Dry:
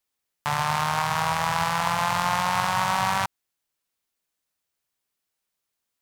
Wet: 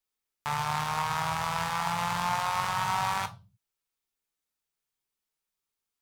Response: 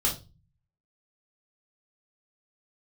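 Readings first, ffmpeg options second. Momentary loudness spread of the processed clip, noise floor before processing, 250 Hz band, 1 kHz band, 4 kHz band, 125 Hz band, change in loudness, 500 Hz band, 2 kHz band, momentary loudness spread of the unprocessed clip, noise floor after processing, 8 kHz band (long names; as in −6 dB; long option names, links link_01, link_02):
5 LU, −82 dBFS, −6.0 dB, −5.0 dB, −5.5 dB, −5.0 dB, −5.5 dB, −7.5 dB, −6.5 dB, 4 LU, below −85 dBFS, −5.5 dB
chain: -filter_complex "[0:a]asplit=2[link_01][link_02];[1:a]atrim=start_sample=2205,afade=type=out:start_time=0.36:duration=0.01,atrim=end_sample=16317[link_03];[link_02][link_03]afir=irnorm=-1:irlink=0,volume=-13.5dB[link_04];[link_01][link_04]amix=inputs=2:normalize=0,volume=-8dB"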